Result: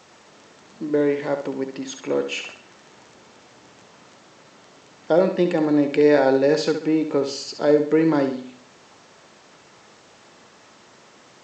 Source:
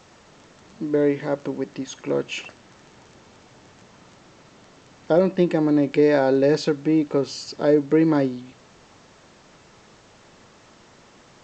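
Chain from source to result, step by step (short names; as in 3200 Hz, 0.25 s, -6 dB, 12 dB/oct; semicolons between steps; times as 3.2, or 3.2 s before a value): HPF 270 Hz 6 dB/oct; flutter echo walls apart 11.6 m, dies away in 0.49 s; gain +1.5 dB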